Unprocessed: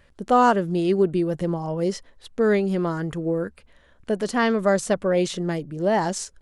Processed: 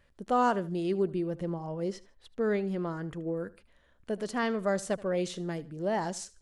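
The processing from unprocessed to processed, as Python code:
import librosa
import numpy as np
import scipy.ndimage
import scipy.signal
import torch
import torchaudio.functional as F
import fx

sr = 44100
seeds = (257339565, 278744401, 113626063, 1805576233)

y = fx.high_shelf(x, sr, hz=5100.0, db=-6.5, at=(1.09, 3.37))
y = fx.echo_feedback(y, sr, ms=77, feedback_pct=30, wet_db=-20)
y = y * librosa.db_to_amplitude(-9.0)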